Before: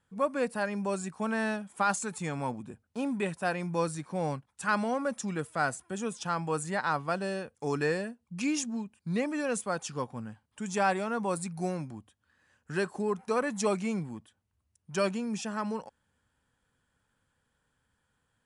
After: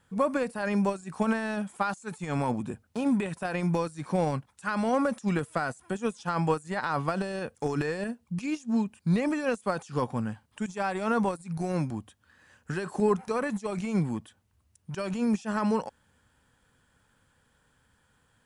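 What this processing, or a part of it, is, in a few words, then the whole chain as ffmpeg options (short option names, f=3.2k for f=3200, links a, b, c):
de-esser from a sidechain: -filter_complex "[0:a]asplit=2[a][b];[b]highpass=6.9k,apad=whole_len=813708[c];[a][c]sidechaincompress=threshold=-60dB:ratio=16:attack=3.1:release=42,volume=9dB"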